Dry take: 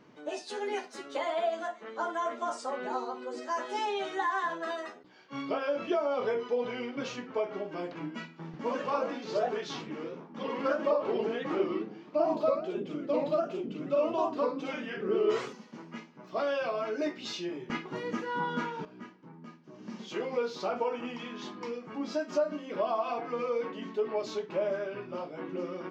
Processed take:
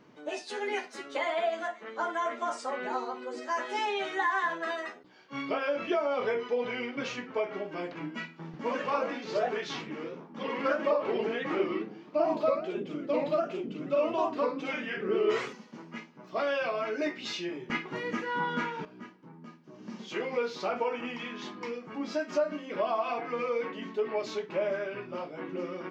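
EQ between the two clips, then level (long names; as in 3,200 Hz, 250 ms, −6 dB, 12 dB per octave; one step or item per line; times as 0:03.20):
dynamic equaliser 2,100 Hz, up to +7 dB, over −53 dBFS, Q 1.5
0.0 dB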